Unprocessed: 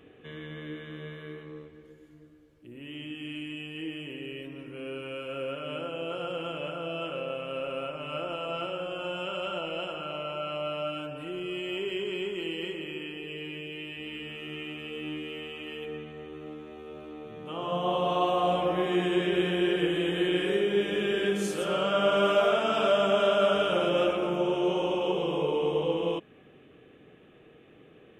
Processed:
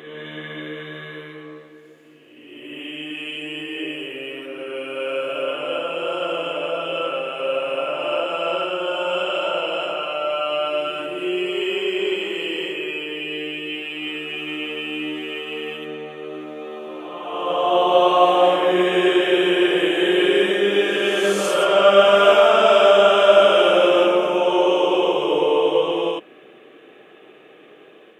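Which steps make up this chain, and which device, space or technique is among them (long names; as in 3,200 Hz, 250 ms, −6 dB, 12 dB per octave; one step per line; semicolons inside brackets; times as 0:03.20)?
ghost voice (reversed playback; convolution reverb RT60 1.8 s, pre-delay 57 ms, DRR −1.5 dB; reversed playback; high-pass filter 380 Hz 12 dB per octave)
level +7.5 dB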